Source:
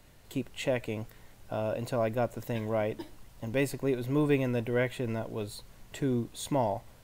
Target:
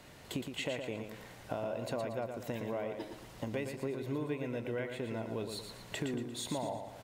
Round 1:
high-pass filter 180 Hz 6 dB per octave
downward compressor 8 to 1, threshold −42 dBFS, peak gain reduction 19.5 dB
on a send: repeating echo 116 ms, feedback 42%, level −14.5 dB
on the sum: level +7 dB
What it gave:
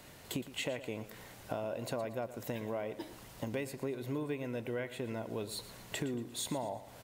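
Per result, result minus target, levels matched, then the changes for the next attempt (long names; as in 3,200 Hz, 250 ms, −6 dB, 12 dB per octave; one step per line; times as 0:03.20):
echo-to-direct −8 dB; 8,000 Hz band +3.5 dB
change: repeating echo 116 ms, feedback 42%, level −6.5 dB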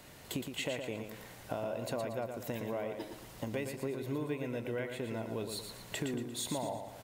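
8,000 Hz band +3.5 dB
add after downward compressor: high-shelf EQ 9,400 Hz −10 dB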